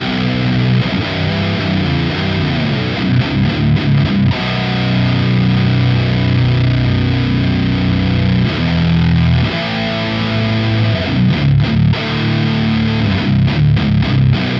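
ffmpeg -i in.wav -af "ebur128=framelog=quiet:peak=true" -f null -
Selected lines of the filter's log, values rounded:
Integrated loudness:
  I:         -14.0 LUFS
  Threshold: -24.0 LUFS
Loudness range:
  LRA:         1.3 LU
  Threshold: -34.0 LUFS
  LRA low:   -14.8 LUFS
  LRA high:  -13.5 LUFS
True peak:
  Peak:       -2.3 dBFS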